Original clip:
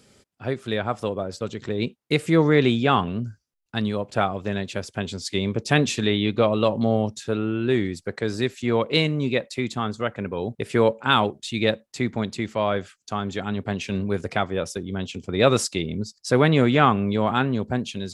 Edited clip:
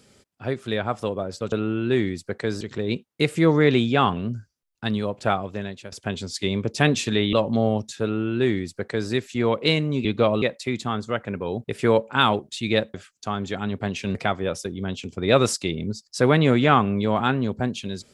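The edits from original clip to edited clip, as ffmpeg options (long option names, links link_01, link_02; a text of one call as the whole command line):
ffmpeg -i in.wav -filter_complex "[0:a]asplit=9[link_01][link_02][link_03][link_04][link_05][link_06][link_07][link_08][link_09];[link_01]atrim=end=1.522[link_10];[link_02]atrim=start=7.298:end=8.392[link_11];[link_03]atrim=start=1.518:end=4.83,asetpts=PTS-STARTPTS,afade=type=out:start_time=2.712:duration=0.6:silence=0.237137[link_12];[link_04]atrim=start=4.83:end=6.242,asetpts=PTS-STARTPTS,afade=type=in:duration=0.004:curve=hsin:silence=0.237137[link_13];[link_05]atrim=start=6.608:end=9.332[link_14];[link_06]atrim=start=6.238:end=6.612[link_15];[link_07]atrim=start=9.328:end=11.852[link_16];[link_08]atrim=start=12.788:end=14.002[link_17];[link_09]atrim=start=14.258[link_18];[link_10][link_11]acrossfade=duration=0.004:curve1=hsin:curve2=hsin[link_19];[link_12][link_13]concat=n=2:v=0:a=1[link_20];[link_19][link_20]acrossfade=duration=0.004:curve1=hsin:curve2=hsin[link_21];[link_21][link_14]acrossfade=duration=0.004:curve1=hsin:curve2=hsin[link_22];[link_22][link_15]acrossfade=duration=0.004:curve1=hsin:curve2=hsin[link_23];[link_23][link_16]acrossfade=duration=0.004:curve1=hsin:curve2=hsin[link_24];[link_24][link_17]acrossfade=duration=0.004:curve1=hsin:curve2=hsin[link_25];[link_25][link_18]acrossfade=duration=0.004:curve1=hsin:curve2=hsin" out.wav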